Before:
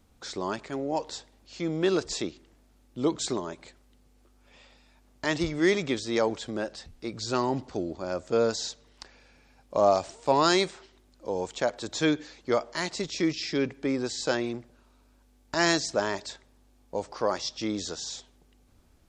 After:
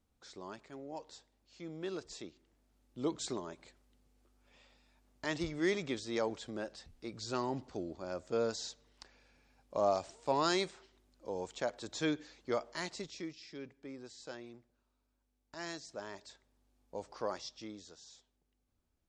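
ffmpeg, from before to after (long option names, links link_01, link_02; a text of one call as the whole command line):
ffmpeg -i in.wav -af "volume=0.5dB,afade=type=in:start_time=2.28:duration=0.79:silence=0.473151,afade=type=out:start_time=12.85:duration=0.47:silence=0.298538,afade=type=in:start_time=15.81:duration=1.41:silence=0.334965,afade=type=out:start_time=17.22:duration=0.61:silence=0.316228" out.wav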